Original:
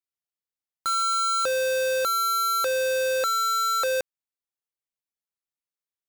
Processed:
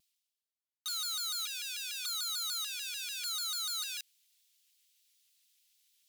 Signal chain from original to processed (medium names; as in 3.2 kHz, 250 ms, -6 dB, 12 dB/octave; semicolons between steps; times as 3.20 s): reverse; upward compressor, threshold -42 dBFS; reverse; ladder high-pass 2.5 kHz, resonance 30%; vibrato with a chosen wave saw down 6.8 Hz, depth 160 cents